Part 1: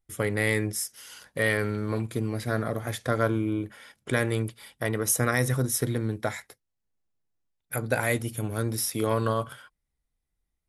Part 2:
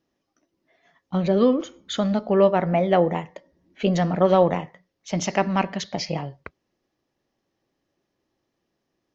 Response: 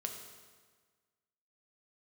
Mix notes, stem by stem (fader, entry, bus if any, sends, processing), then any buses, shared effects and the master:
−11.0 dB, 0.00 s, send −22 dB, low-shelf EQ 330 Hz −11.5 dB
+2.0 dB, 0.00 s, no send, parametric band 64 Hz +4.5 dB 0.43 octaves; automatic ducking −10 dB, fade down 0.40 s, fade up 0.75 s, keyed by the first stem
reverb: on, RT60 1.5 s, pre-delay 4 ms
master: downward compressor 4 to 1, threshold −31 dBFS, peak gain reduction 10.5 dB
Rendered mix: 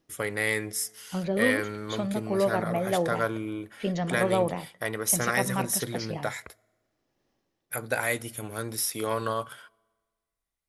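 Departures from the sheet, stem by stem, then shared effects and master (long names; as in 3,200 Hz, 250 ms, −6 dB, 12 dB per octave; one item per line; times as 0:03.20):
stem 1 −11.0 dB → 0.0 dB
master: missing downward compressor 4 to 1, threshold −31 dBFS, peak gain reduction 10.5 dB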